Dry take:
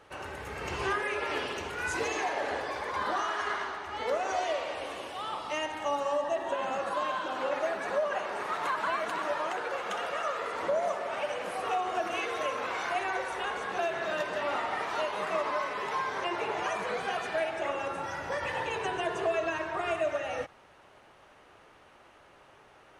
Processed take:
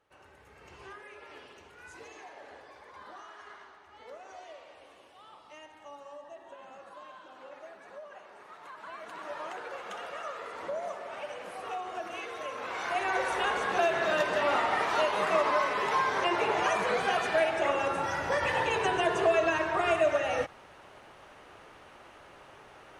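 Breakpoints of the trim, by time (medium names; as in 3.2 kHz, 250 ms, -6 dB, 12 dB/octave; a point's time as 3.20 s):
8.65 s -17 dB
9.43 s -6.5 dB
12.45 s -6.5 dB
13.27 s +4.5 dB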